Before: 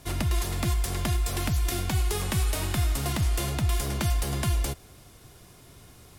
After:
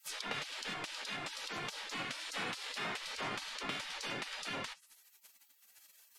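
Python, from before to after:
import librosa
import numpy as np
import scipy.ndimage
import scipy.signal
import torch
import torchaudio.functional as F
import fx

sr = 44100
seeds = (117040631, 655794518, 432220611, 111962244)

y = fx.env_lowpass_down(x, sr, base_hz=2300.0, full_db=-23.5)
y = fx.spec_gate(y, sr, threshold_db=-30, keep='weak')
y = y * 10.0 ** (6.0 / 20.0)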